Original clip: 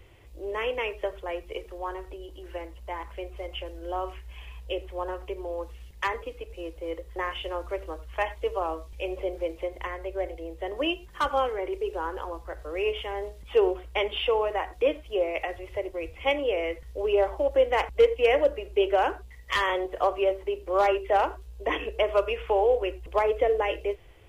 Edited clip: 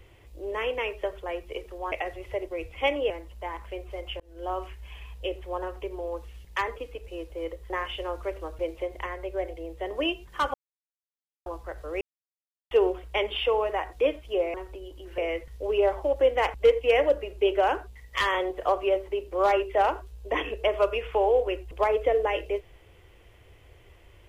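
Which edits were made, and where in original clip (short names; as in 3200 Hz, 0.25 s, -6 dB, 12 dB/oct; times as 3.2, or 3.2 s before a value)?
1.92–2.56 swap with 15.35–16.53
3.66–3.96 fade in
8.05–9.4 cut
11.35–12.27 mute
12.82–13.52 mute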